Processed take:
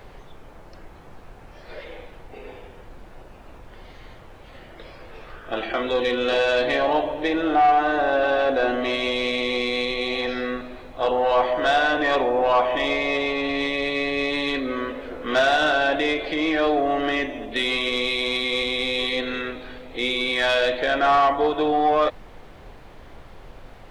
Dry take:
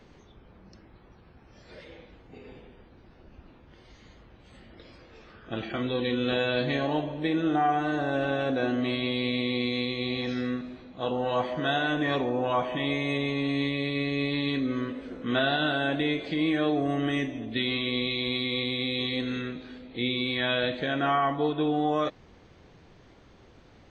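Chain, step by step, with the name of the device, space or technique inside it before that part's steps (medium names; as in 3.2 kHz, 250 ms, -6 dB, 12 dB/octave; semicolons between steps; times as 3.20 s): aircraft cabin announcement (band-pass 450–3700 Hz; saturation -23.5 dBFS, distortion -15 dB; brown noise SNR 17 dB); peaking EQ 690 Hz +3.5 dB 1.5 oct; trim +9 dB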